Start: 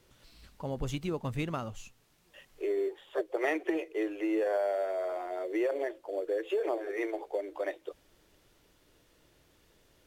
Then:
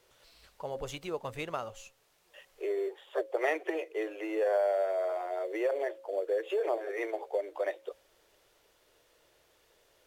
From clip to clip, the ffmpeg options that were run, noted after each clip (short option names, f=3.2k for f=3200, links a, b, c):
-af "lowshelf=f=350:t=q:w=1.5:g=-10,bandreject=f=272.2:t=h:w=4,bandreject=f=544.4:t=h:w=4"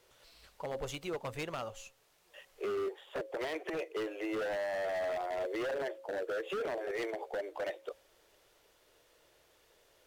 -af "alimiter=level_in=1.5dB:limit=-24dB:level=0:latency=1:release=56,volume=-1.5dB,aeval=exprs='0.0299*(abs(mod(val(0)/0.0299+3,4)-2)-1)':c=same"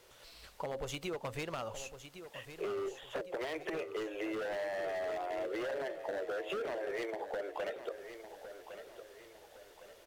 -filter_complex "[0:a]acompressor=threshold=-41dB:ratio=6,asplit=2[a][b];[b]aecho=0:1:1109|2218|3327|4436:0.282|0.118|0.0497|0.0209[c];[a][c]amix=inputs=2:normalize=0,volume=5dB"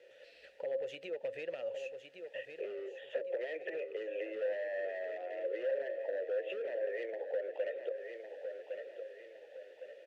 -filter_complex "[0:a]acompressor=threshold=-41dB:ratio=2.5,asplit=3[a][b][c];[a]bandpass=f=530:t=q:w=8,volume=0dB[d];[b]bandpass=f=1.84k:t=q:w=8,volume=-6dB[e];[c]bandpass=f=2.48k:t=q:w=8,volume=-9dB[f];[d][e][f]amix=inputs=3:normalize=0,volume=11dB"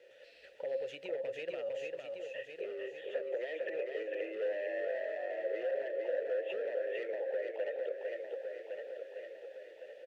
-af "aecho=1:1:453:0.631"